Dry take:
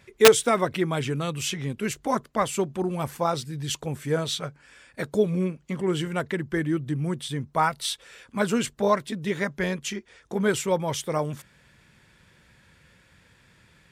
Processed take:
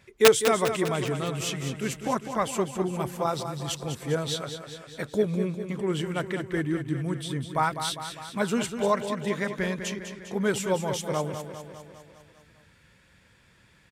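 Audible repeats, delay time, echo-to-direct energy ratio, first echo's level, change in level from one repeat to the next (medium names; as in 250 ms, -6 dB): 6, 201 ms, -7.0 dB, -9.0 dB, -4.5 dB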